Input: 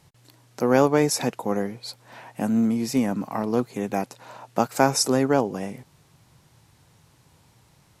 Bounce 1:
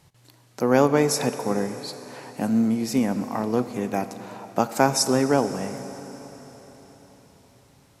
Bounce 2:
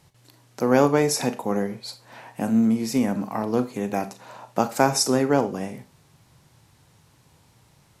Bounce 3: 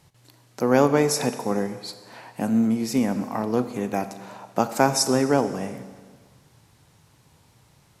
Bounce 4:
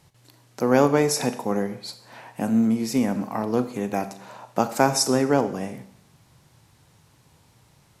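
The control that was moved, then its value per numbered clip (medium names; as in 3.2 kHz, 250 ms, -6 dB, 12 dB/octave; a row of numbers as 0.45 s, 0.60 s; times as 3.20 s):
Schroeder reverb, RT60: 4.5 s, 0.3 s, 1.6 s, 0.69 s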